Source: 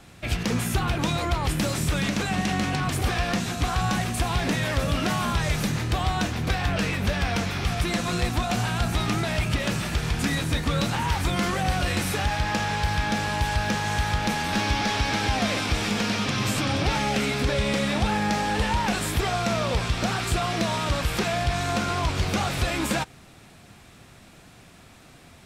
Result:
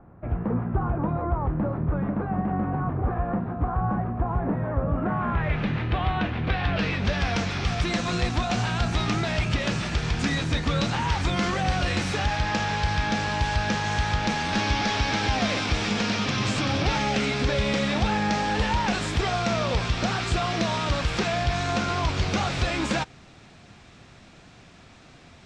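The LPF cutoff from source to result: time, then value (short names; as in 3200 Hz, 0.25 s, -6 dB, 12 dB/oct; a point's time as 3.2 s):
LPF 24 dB/oct
4.97 s 1200 Hz
5.67 s 3100 Hz
6.38 s 3100 Hz
7.29 s 6800 Hz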